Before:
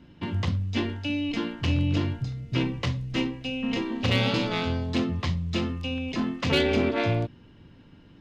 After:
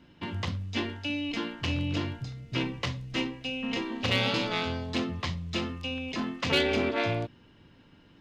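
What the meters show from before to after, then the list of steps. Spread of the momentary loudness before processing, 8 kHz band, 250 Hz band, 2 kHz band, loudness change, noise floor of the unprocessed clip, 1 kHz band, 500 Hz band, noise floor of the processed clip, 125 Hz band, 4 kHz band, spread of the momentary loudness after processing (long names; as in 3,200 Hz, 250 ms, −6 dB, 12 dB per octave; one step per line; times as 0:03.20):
7 LU, can't be measured, −5.0 dB, 0.0 dB, −3.5 dB, −52 dBFS, −1.0 dB, −3.0 dB, −58 dBFS, −7.0 dB, 0.0 dB, 8 LU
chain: low-shelf EQ 370 Hz −7.5 dB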